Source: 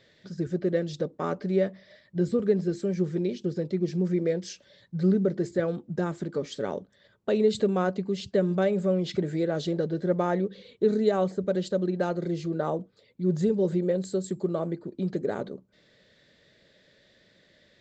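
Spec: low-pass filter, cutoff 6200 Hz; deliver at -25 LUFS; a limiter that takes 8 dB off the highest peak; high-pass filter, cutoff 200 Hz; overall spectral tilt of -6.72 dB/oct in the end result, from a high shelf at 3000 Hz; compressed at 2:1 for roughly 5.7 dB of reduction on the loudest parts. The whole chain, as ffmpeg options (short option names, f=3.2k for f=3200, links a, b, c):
-af "highpass=200,lowpass=6.2k,highshelf=f=3k:g=-4,acompressor=threshold=-29dB:ratio=2,volume=10.5dB,alimiter=limit=-14.5dB:level=0:latency=1"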